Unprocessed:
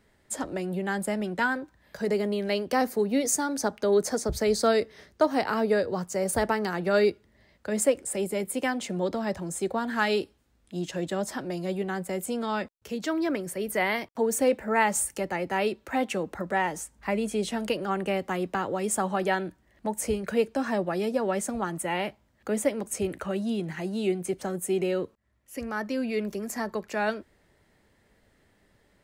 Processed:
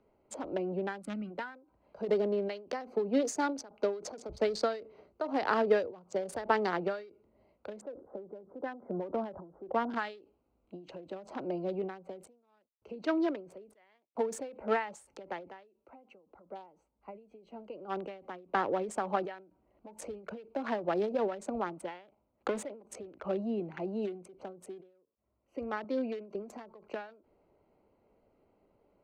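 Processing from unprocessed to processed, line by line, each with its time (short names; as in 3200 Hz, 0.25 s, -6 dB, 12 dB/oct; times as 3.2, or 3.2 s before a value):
1.02–1.31 spectral gain 320–1100 Hz -16 dB
7.81–9.94 steep low-pass 1800 Hz 96 dB/oct
15.56–18.03 dip -12 dB, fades 0.16 s
22.08–22.63 sample leveller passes 2
25.84–26.35 HPF 170 Hz
whole clip: Wiener smoothing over 25 samples; three-band isolator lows -12 dB, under 290 Hz, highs -22 dB, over 5700 Hz; ending taper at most 120 dB/s; gain +1.5 dB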